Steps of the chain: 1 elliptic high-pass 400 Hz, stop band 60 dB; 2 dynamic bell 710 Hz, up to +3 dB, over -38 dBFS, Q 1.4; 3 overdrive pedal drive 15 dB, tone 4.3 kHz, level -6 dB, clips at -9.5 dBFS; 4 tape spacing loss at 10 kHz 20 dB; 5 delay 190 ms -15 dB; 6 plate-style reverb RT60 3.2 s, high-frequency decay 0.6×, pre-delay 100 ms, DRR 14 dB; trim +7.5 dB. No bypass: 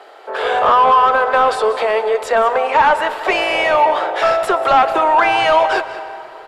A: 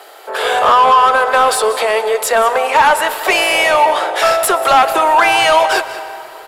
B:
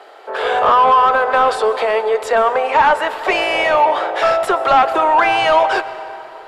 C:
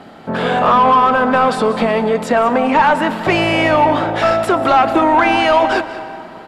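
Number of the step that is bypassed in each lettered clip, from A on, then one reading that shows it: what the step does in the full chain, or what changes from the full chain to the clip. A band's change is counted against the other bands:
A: 4, 8 kHz band +14.0 dB; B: 5, echo-to-direct -11.5 dB to -14.0 dB; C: 1, 250 Hz band +13.0 dB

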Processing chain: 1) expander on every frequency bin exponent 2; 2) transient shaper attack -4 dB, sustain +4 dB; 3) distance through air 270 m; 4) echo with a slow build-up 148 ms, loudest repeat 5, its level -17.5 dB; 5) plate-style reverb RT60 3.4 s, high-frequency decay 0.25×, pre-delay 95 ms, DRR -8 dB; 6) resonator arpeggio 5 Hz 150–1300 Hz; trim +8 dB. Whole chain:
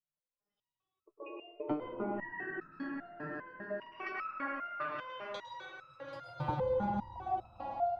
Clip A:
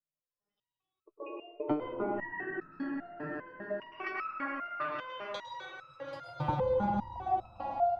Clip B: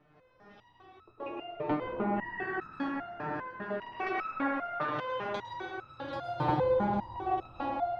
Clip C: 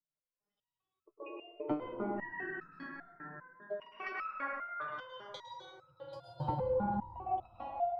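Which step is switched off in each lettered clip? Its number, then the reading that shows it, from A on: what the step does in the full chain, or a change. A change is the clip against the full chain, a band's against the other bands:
2, loudness change +3.0 LU; 1, loudness change +5.5 LU; 4, momentary loudness spread change +2 LU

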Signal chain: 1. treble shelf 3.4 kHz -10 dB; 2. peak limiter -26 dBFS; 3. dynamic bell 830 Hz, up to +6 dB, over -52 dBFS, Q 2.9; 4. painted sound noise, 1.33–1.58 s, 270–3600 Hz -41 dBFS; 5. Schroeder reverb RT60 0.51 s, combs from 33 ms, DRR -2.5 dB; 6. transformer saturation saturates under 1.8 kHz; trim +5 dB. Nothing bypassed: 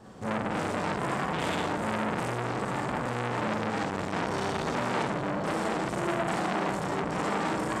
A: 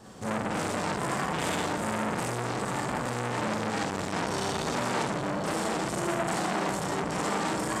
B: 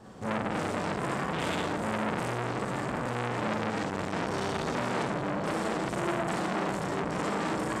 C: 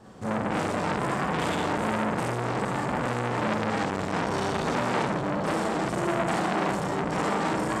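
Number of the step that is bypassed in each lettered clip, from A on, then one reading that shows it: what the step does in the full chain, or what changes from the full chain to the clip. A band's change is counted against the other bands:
1, 8 kHz band +8.0 dB; 3, loudness change -1.0 LU; 2, mean gain reduction 2.5 dB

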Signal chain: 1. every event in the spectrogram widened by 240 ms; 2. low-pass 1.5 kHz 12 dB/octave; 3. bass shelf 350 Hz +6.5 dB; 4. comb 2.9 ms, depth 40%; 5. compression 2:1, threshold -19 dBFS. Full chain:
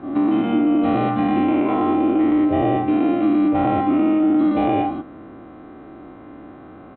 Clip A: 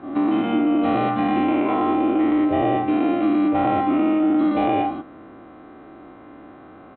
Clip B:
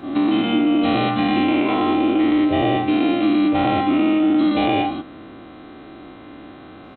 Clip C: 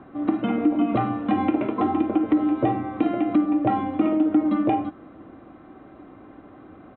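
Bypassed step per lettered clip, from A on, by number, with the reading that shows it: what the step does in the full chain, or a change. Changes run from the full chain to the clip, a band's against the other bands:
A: 3, 125 Hz band -4.0 dB; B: 2, 2 kHz band +7.0 dB; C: 1, crest factor change +3.0 dB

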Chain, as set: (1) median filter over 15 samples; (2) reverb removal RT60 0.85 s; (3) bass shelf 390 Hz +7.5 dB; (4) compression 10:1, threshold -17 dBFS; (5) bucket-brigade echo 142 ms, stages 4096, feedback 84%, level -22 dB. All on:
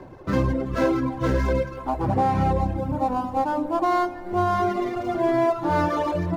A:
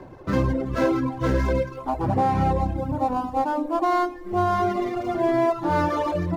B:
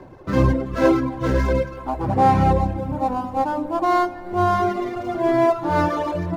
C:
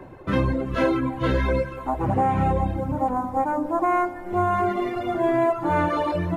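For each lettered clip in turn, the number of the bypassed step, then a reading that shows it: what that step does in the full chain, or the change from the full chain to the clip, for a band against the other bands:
5, echo-to-direct -16.5 dB to none; 4, mean gain reduction 1.5 dB; 1, 2 kHz band +2.0 dB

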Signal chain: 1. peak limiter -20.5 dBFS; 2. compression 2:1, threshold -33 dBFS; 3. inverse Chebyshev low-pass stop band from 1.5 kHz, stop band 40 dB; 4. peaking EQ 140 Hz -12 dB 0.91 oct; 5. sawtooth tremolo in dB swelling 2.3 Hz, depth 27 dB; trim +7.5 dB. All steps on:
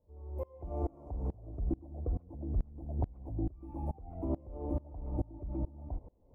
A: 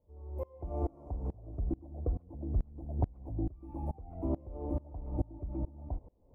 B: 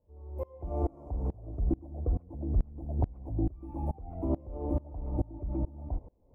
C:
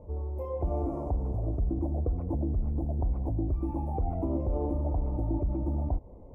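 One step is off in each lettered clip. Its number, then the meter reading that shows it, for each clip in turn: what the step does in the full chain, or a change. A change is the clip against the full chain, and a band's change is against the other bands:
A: 1, crest factor change +1.5 dB; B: 2, mean gain reduction 3.5 dB; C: 5, crest factor change -7.0 dB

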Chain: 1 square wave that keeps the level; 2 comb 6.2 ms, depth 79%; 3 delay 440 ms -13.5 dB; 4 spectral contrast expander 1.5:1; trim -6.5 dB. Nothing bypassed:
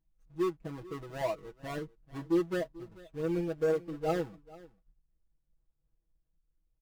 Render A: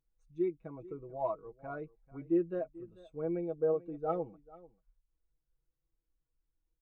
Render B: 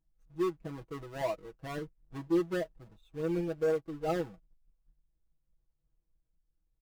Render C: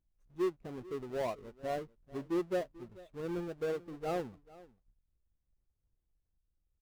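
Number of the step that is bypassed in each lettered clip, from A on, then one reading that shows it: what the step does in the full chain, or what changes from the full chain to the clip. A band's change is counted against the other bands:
1, distortion -5 dB; 3, momentary loudness spread change -2 LU; 2, 125 Hz band -3.0 dB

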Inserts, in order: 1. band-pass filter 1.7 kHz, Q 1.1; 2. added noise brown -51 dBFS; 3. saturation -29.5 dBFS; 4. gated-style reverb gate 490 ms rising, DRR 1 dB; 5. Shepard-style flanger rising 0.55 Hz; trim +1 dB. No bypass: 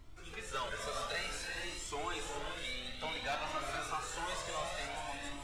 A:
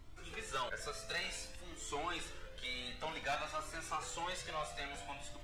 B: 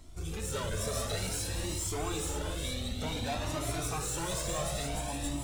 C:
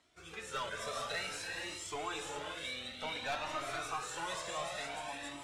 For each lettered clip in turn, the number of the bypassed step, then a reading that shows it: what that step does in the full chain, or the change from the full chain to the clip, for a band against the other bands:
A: 4, momentary loudness spread change +4 LU; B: 1, 125 Hz band +12.0 dB; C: 2, 125 Hz band -3.0 dB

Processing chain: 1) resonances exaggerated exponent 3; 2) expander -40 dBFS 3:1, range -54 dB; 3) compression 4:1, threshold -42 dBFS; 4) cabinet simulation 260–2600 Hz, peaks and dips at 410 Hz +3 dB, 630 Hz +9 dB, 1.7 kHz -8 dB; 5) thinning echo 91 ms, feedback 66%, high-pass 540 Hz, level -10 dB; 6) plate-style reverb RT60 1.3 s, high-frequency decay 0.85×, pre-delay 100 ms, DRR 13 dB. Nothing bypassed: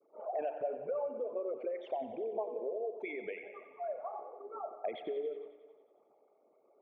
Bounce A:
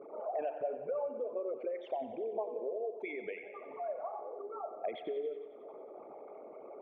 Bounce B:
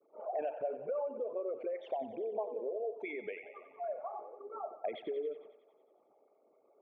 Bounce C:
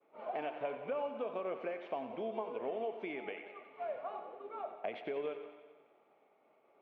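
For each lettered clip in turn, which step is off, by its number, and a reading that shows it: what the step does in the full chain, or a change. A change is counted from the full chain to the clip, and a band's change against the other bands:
2, momentary loudness spread change +4 LU; 6, echo-to-direct -7.0 dB to -9.0 dB; 1, 500 Hz band -4.0 dB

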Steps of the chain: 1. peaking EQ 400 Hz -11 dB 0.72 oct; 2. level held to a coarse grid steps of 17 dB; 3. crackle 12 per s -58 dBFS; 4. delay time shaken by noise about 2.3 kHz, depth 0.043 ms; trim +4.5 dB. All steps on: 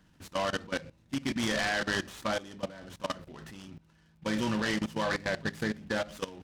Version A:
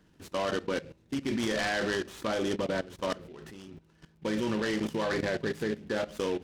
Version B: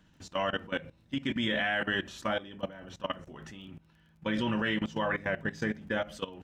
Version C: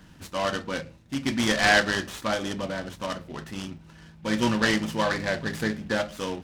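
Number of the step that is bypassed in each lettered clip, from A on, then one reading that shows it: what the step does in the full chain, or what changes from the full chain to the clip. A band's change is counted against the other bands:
1, 500 Hz band +5.0 dB; 4, 8 kHz band -11.0 dB; 2, crest factor change +3.5 dB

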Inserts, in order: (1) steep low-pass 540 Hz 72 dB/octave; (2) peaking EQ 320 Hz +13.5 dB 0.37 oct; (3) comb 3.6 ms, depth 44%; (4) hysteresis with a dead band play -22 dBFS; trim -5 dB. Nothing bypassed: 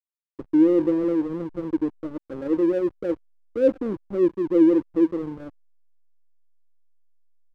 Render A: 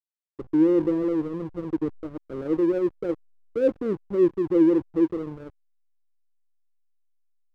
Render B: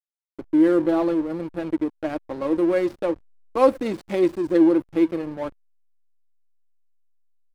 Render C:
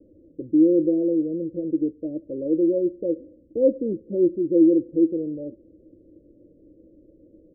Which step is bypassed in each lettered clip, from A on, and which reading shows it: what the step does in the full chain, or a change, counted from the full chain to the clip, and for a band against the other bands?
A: 3, 125 Hz band +3.0 dB; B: 1, 1 kHz band +10.5 dB; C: 4, distortion -13 dB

